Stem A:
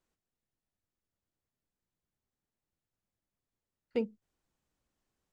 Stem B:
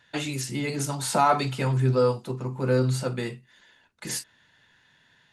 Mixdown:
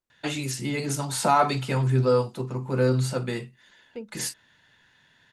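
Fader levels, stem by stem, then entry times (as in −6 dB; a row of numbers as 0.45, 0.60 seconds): −6.0, +0.5 decibels; 0.00, 0.10 seconds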